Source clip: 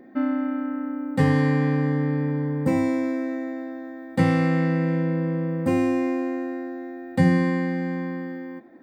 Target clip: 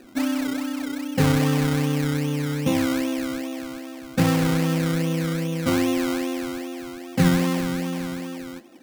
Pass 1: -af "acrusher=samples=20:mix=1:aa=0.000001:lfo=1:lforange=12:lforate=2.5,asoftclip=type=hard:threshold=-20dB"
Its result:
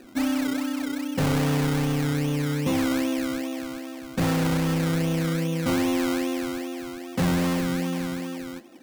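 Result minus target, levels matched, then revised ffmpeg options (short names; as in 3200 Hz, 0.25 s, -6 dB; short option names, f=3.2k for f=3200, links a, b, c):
hard clip: distortion +33 dB
-af "acrusher=samples=20:mix=1:aa=0.000001:lfo=1:lforange=12:lforate=2.5,asoftclip=type=hard:threshold=-9dB"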